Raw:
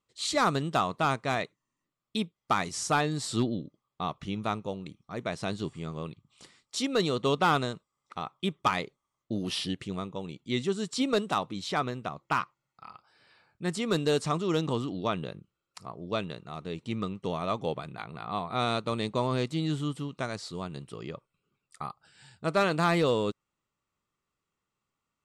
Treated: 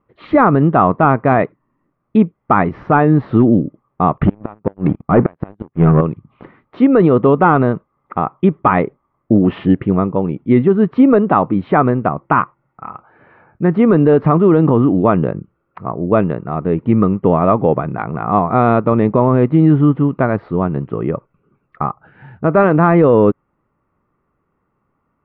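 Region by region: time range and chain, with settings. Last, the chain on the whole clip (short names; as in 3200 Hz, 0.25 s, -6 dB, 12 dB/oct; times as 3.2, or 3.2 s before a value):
4.17–6.01 flipped gate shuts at -24 dBFS, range -33 dB + sample leveller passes 3
whole clip: Bessel low-pass 1200 Hz, order 6; bell 280 Hz +2.5 dB; maximiser +21 dB; gain -1 dB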